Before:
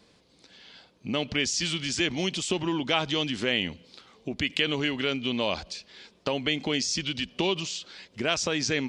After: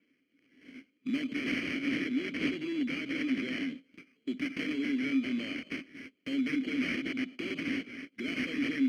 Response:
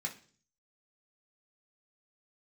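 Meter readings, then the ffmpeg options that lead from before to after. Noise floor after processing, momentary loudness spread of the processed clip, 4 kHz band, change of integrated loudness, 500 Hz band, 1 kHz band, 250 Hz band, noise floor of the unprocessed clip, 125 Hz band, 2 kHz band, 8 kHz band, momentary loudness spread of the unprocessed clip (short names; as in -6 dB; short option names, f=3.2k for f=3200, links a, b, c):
-74 dBFS, 11 LU, -14.0 dB, -6.0 dB, -12.0 dB, -16.5 dB, +0.5 dB, -61 dBFS, -13.0 dB, -4.5 dB, under -20 dB, 10 LU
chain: -filter_complex "[0:a]asplit=2[a][b];[b]highpass=f=720:p=1,volume=33dB,asoftclip=type=tanh:threshold=-9dB[c];[a][c]amix=inputs=2:normalize=0,lowpass=f=1.8k:p=1,volume=-6dB,aexciter=amount=13.5:drive=5.2:freq=7.9k,highshelf=f=2.4k:g=4,agate=range=-15dB:threshold=-27dB:ratio=16:detection=peak,acrusher=samples=12:mix=1:aa=0.000001,asplit=3[d][e][f];[d]bandpass=f=270:t=q:w=8,volume=0dB[g];[e]bandpass=f=2.29k:t=q:w=8,volume=-6dB[h];[f]bandpass=f=3.01k:t=q:w=8,volume=-9dB[i];[g][h][i]amix=inputs=3:normalize=0,adynamicequalizer=threshold=0.00355:dfrequency=6500:dqfactor=0.7:tfrequency=6500:tqfactor=0.7:attack=5:release=100:ratio=0.375:range=3:mode=cutabove:tftype=highshelf,volume=-5.5dB"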